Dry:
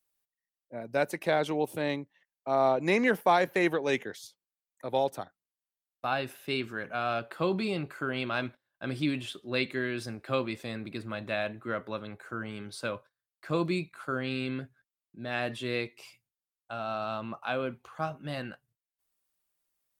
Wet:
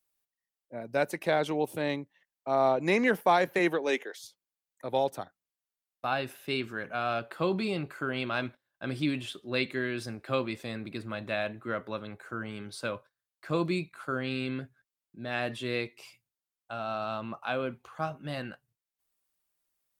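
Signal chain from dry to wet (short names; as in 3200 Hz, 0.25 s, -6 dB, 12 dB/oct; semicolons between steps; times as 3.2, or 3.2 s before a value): 3.58–4.18 HPF 110 Hz -> 450 Hz 24 dB/oct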